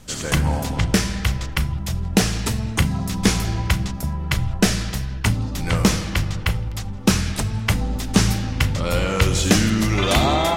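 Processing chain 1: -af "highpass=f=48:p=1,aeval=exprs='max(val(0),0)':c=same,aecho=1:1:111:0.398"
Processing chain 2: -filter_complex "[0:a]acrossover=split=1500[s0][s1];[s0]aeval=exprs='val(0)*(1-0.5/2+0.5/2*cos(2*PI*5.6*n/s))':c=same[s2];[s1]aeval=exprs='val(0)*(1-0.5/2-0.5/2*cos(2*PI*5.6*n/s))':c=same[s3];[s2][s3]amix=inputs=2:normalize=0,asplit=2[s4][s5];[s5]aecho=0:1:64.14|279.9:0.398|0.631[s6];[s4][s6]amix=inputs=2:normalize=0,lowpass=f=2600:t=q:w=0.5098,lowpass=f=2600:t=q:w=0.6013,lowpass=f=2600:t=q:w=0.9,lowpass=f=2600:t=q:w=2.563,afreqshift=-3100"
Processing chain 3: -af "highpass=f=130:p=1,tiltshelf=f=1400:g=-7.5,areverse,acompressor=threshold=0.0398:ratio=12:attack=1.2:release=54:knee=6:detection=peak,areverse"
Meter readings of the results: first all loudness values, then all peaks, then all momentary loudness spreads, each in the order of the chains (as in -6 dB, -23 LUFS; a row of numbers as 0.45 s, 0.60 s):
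-26.0 LUFS, -18.5 LUFS, -32.0 LUFS; -3.0 dBFS, -3.0 dBFS, -19.5 dBFS; 8 LU, 5 LU, 4 LU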